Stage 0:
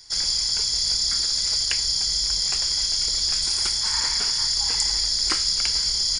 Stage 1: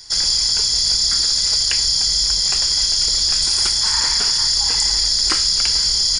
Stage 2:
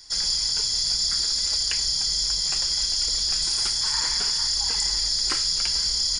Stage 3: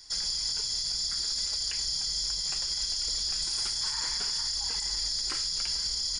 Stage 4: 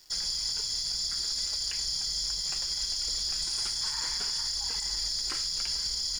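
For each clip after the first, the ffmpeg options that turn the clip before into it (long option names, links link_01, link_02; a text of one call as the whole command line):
ffmpeg -i in.wav -filter_complex "[0:a]bandreject=frequency=2200:width=17,asplit=2[link_01][link_02];[link_02]alimiter=limit=-17dB:level=0:latency=1,volume=3dB[link_03];[link_01][link_03]amix=inputs=2:normalize=0" out.wav
ffmpeg -i in.wav -af "flanger=delay=3.5:depth=4.2:regen=-42:speed=0.66:shape=triangular,volume=-3dB" out.wav
ffmpeg -i in.wav -af "alimiter=limit=-18dB:level=0:latency=1:release=90,volume=-3.5dB" out.wav
ffmpeg -i in.wav -af "aeval=exprs='sgn(val(0))*max(abs(val(0))-0.00224,0)':channel_layout=same" out.wav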